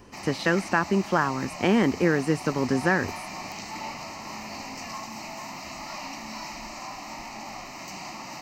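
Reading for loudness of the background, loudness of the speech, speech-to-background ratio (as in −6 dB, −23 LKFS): −37.0 LKFS, −25.0 LKFS, 12.0 dB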